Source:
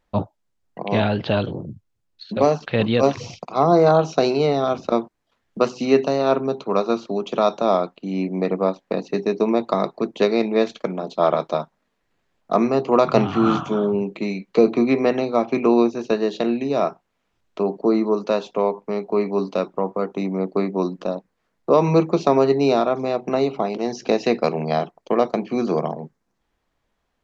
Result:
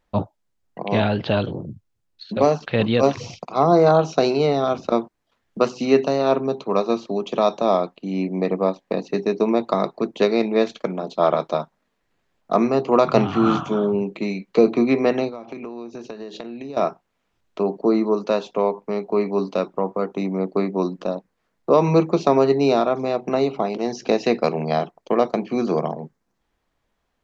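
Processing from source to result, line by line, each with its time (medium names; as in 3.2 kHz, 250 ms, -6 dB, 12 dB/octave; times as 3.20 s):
6.27–9.02 s: band-stop 1.4 kHz, Q 8.4
15.28–16.77 s: compression 20:1, threshold -29 dBFS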